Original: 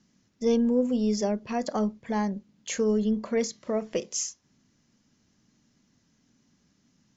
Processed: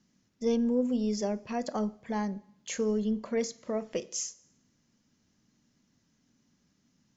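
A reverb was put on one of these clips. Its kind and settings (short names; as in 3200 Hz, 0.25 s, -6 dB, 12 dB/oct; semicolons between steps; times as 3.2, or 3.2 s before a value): two-slope reverb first 0.74 s, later 1.9 s, from -24 dB, DRR 18 dB; gain -4 dB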